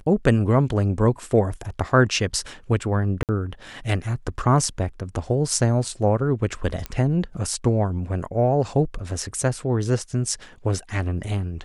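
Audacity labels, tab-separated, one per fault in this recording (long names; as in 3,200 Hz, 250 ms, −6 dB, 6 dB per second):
3.230000	3.290000	drop-out 58 ms
6.860000	6.860000	click −14 dBFS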